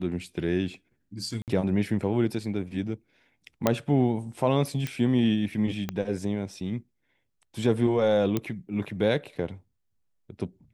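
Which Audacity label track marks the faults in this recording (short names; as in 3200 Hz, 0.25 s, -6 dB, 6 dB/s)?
1.420000	1.480000	gap 58 ms
3.670000	3.670000	pop -7 dBFS
4.870000	4.870000	pop -17 dBFS
5.890000	5.890000	pop -16 dBFS
8.370000	8.370000	pop -13 dBFS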